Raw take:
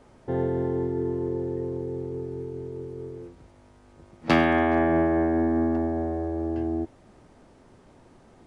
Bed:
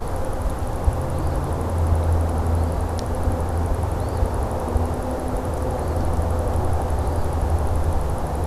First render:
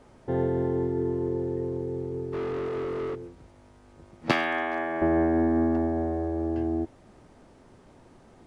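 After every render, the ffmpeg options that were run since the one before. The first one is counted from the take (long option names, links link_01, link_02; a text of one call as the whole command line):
ffmpeg -i in.wav -filter_complex "[0:a]asplit=3[link_01][link_02][link_03];[link_01]afade=type=out:start_time=2.32:duration=0.02[link_04];[link_02]asplit=2[link_05][link_06];[link_06]highpass=frequency=720:poles=1,volume=30dB,asoftclip=type=tanh:threshold=-24.5dB[link_07];[link_05][link_07]amix=inputs=2:normalize=0,lowpass=frequency=1800:poles=1,volume=-6dB,afade=type=in:start_time=2.32:duration=0.02,afade=type=out:start_time=3.14:duration=0.02[link_08];[link_03]afade=type=in:start_time=3.14:duration=0.02[link_09];[link_04][link_08][link_09]amix=inputs=3:normalize=0,asettb=1/sr,asplit=3[link_10][link_11][link_12];[link_10]atrim=end=4.314[link_13];[link_11]atrim=start=4.31:end=5.02,asetpts=PTS-STARTPTS,afade=type=in:duration=0.004:curve=qsin,afade=type=out:start_time=0.706:duration=0.004:curve=qsin,highpass=frequency=1200:poles=1[link_14];[link_12]atrim=start=5.016[link_15];[link_13][link_14]acrossfade=duration=0.004:curve1=hsin:curve2=qsin[link_16];[link_16][link_15]acrossfade=duration=0.004:curve1=qsin:curve2=hsin" out.wav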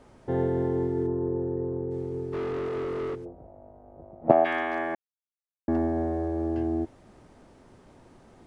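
ffmpeg -i in.wav -filter_complex "[0:a]asplit=3[link_01][link_02][link_03];[link_01]afade=type=out:start_time=1.06:duration=0.02[link_04];[link_02]lowpass=frequency=1500:width=0.5412,lowpass=frequency=1500:width=1.3066,afade=type=in:start_time=1.06:duration=0.02,afade=type=out:start_time=1.9:duration=0.02[link_05];[link_03]afade=type=in:start_time=1.9:duration=0.02[link_06];[link_04][link_05][link_06]amix=inputs=3:normalize=0,asplit=3[link_07][link_08][link_09];[link_07]afade=type=out:start_time=3.24:duration=0.02[link_10];[link_08]lowpass=frequency=670:width_type=q:width=5.1,afade=type=in:start_time=3.24:duration=0.02,afade=type=out:start_time=4.44:duration=0.02[link_11];[link_09]afade=type=in:start_time=4.44:duration=0.02[link_12];[link_10][link_11][link_12]amix=inputs=3:normalize=0,asplit=3[link_13][link_14][link_15];[link_13]atrim=end=4.95,asetpts=PTS-STARTPTS,afade=type=out:start_time=4.946:duration=0.004:curve=hsin[link_16];[link_14]atrim=start=4.95:end=5.68,asetpts=PTS-STARTPTS,volume=0[link_17];[link_15]atrim=start=5.68,asetpts=PTS-STARTPTS,afade=type=in:duration=0.004:curve=hsin[link_18];[link_16][link_17][link_18]concat=n=3:v=0:a=1" out.wav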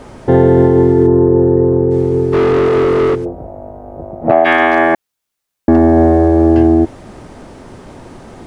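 ffmpeg -i in.wav -af "acontrast=64,alimiter=level_in=13dB:limit=-1dB:release=50:level=0:latency=1" out.wav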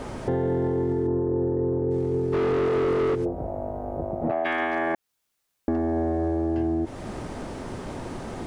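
ffmpeg -i in.wav -af "alimiter=limit=-12dB:level=0:latency=1:release=37,acompressor=threshold=-27dB:ratio=2" out.wav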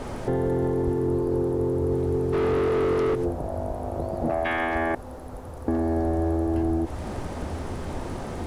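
ffmpeg -i in.wav -i bed.wav -filter_complex "[1:a]volume=-14dB[link_01];[0:a][link_01]amix=inputs=2:normalize=0" out.wav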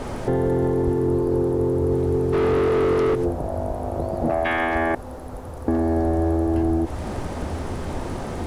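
ffmpeg -i in.wav -af "volume=3.5dB" out.wav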